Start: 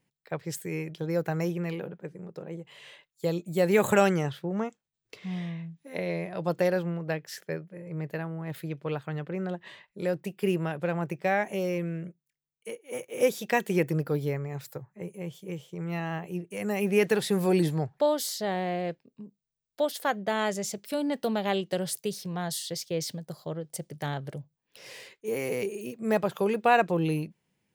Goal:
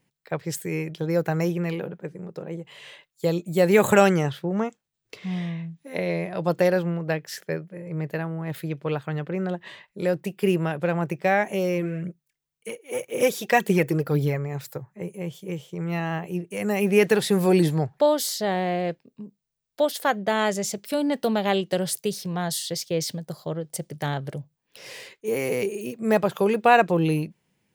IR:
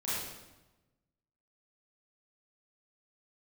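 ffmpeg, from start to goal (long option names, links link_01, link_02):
-filter_complex "[0:a]asplit=3[link_01][link_02][link_03];[link_01]afade=type=out:start_time=11.8:duration=0.02[link_04];[link_02]aphaser=in_gain=1:out_gain=1:delay=3:decay=0.43:speed=1.9:type=triangular,afade=type=in:start_time=11.8:duration=0.02,afade=type=out:start_time=14.37:duration=0.02[link_05];[link_03]afade=type=in:start_time=14.37:duration=0.02[link_06];[link_04][link_05][link_06]amix=inputs=3:normalize=0,volume=5dB"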